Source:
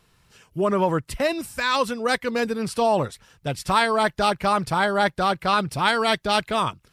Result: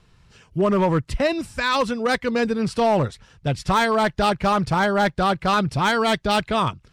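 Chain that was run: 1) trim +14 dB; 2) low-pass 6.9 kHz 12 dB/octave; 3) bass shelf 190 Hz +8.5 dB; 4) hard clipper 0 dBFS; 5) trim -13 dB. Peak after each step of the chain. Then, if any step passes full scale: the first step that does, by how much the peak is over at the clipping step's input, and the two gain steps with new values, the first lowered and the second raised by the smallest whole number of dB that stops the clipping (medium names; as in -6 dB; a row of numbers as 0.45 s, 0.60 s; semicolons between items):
+8.5 dBFS, +8.5 dBFS, +8.5 dBFS, 0.0 dBFS, -13.0 dBFS; step 1, 8.5 dB; step 1 +5 dB, step 5 -4 dB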